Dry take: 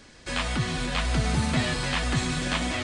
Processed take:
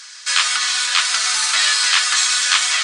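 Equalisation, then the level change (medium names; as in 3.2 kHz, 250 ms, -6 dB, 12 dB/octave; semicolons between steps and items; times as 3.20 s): resonant high-pass 1.3 kHz, resonance Q 2.7; treble shelf 4.2 kHz +9 dB; peaking EQ 5.7 kHz +13 dB 2 oct; +1.5 dB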